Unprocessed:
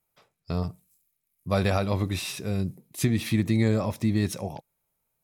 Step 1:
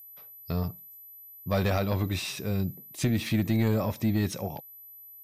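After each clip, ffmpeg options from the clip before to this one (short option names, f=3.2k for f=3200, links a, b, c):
-filter_complex "[0:a]aeval=exprs='val(0)+0.01*sin(2*PI*12000*n/s)':c=same,asoftclip=type=tanh:threshold=-17dB,acrossover=split=9200[a][b];[b]acompressor=threshold=-52dB:ratio=4:attack=1:release=60[c];[a][c]amix=inputs=2:normalize=0"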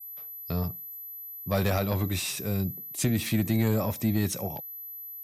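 -filter_complex "[0:a]adynamicequalizer=threshold=0.00251:dfrequency=7900:dqfactor=1.5:tfrequency=7900:tqfactor=1.5:attack=5:release=100:ratio=0.375:range=2:mode=boostabove:tftype=bell,acrossover=split=120|1300|6000[a][b][c][d];[d]crystalizer=i=1:c=0[e];[a][b][c][e]amix=inputs=4:normalize=0"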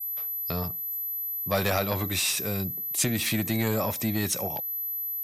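-filter_complex "[0:a]asplit=2[a][b];[b]acompressor=threshold=-39dB:ratio=6,volume=-1dB[c];[a][c]amix=inputs=2:normalize=0,lowshelf=f=430:g=-9.5,volume=4dB"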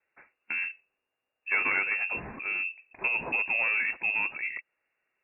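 -af "lowpass=f=2.4k:t=q:w=0.5098,lowpass=f=2.4k:t=q:w=0.6013,lowpass=f=2.4k:t=q:w=0.9,lowpass=f=2.4k:t=q:w=2.563,afreqshift=-2800,volume=-1dB"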